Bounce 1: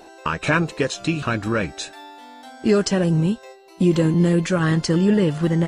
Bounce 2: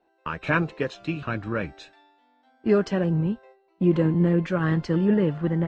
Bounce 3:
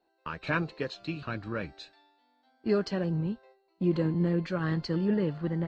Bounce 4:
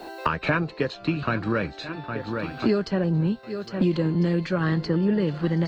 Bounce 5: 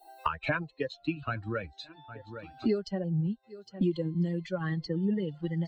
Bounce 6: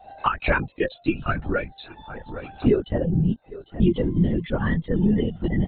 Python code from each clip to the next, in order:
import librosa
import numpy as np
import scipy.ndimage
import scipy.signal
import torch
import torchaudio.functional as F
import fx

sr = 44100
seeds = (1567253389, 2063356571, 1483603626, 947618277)

y1 = scipy.signal.sosfilt(scipy.signal.butter(2, 2500.0, 'lowpass', fs=sr, output='sos'), x)
y1 = fx.band_widen(y1, sr, depth_pct=70)
y1 = y1 * 10.0 ** (-4.0 / 20.0)
y2 = fx.peak_eq(y1, sr, hz=4400.0, db=14.0, octaves=0.29)
y2 = y2 * 10.0 ** (-6.5 / 20.0)
y3 = fx.echo_swing(y2, sr, ms=1349, ratio=1.5, feedback_pct=35, wet_db=-21.5)
y3 = fx.band_squash(y3, sr, depth_pct=100)
y3 = y3 * 10.0 ** (5.5 / 20.0)
y4 = fx.bin_expand(y3, sr, power=2.0)
y4 = y4 * 10.0 ** (-3.0 / 20.0)
y5 = fx.lpc_vocoder(y4, sr, seeds[0], excitation='whisper', order=16)
y5 = y5 * 10.0 ** (9.0 / 20.0)